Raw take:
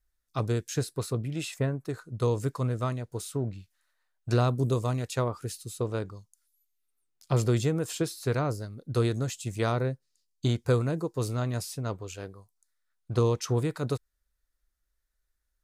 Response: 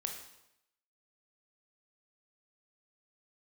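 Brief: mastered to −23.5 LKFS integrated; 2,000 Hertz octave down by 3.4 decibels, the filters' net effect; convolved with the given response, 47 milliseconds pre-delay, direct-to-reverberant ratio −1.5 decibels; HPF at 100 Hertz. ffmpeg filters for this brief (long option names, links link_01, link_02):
-filter_complex "[0:a]highpass=100,equalizer=frequency=2000:width_type=o:gain=-5,asplit=2[link_01][link_02];[1:a]atrim=start_sample=2205,adelay=47[link_03];[link_02][link_03]afir=irnorm=-1:irlink=0,volume=1.5dB[link_04];[link_01][link_04]amix=inputs=2:normalize=0,volume=4dB"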